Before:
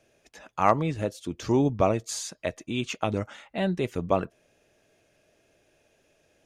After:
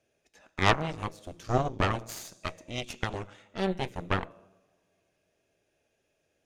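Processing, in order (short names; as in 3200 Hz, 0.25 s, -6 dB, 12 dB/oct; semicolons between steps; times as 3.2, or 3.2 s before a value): two-slope reverb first 0.93 s, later 2.9 s, from -23 dB, DRR 11 dB; added harmonics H 3 -15 dB, 6 -9 dB, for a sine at -4.5 dBFS; gain -3.5 dB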